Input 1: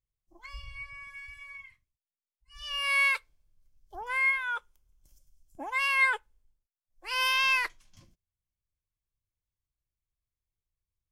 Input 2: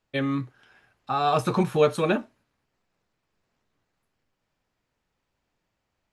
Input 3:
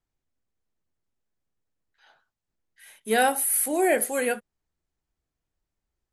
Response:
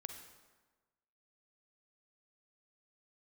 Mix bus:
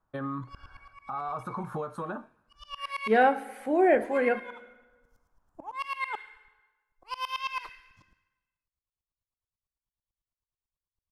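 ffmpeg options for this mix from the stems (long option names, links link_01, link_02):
-filter_complex "[0:a]equalizer=frequency=3200:width_type=o:width=2:gain=7.5,aeval=exprs='val(0)*pow(10,-27*if(lt(mod(-9.1*n/s,1),2*abs(-9.1)/1000),1-mod(-9.1*n/s,1)/(2*abs(-9.1)/1000),(mod(-9.1*n/s,1)-2*abs(-9.1)/1000)/(1-2*abs(-9.1)/1000))/20)':channel_layout=same,volume=-0.5dB,asplit=2[link_01][link_02];[link_02]volume=-7.5dB[link_03];[1:a]equalizer=frequency=400:width_type=o:width=0.67:gain=-4,equalizer=frequency=1600:width_type=o:width=0.67:gain=10,equalizer=frequency=10000:width_type=o:width=0.67:gain=6,acompressor=threshold=-24dB:ratio=6,volume=-3.5dB,asplit=2[link_04][link_05];[link_05]volume=-24dB[link_06];[2:a]lowpass=1700,volume=-1.5dB,asplit=3[link_07][link_08][link_09];[link_08]volume=-5dB[link_10];[link_09]apad=whole_len=490099[link_11];[link_01][link_11]sidechaincompress=threshold=-34dB:ratio=8:attack=16:release=958[link_12];[link_12][link_04]amix=inputs=2:normalize=0,highshelf=frequency=1600:width_type=q:width=3:gain=-13,alimiter=level_in=2dB:limit=-24dB:level=0:latency=1:release=151,volume=-2dB,volume=0dB[link_13];[3:a]atrim=start_sample=2205[link_14];[link_03][link_06][link_10]amix=inputs=3:normalize=0[link_15];[link_15][link_14]afir=irnorm=-1:irlink=0[link_16];[link_07][link_13][link_16]amix=inputs=3:normalize=0"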